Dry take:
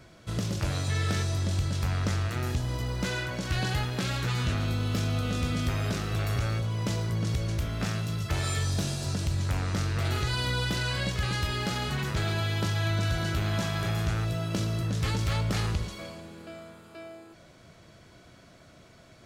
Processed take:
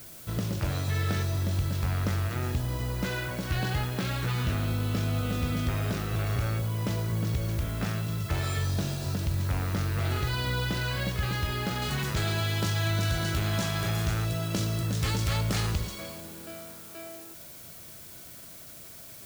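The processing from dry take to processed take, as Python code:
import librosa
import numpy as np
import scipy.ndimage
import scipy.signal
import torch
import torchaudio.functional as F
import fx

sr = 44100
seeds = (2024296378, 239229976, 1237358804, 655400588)

y = fx.high_shelf(x, sr, hz=5000.0, db=fx.steps((0.0, -9.0), (11.81, 5.5)))
y = fx.dmg_noise_colour(y, sr, seeds[0], colour='blue', level_db=-47.0)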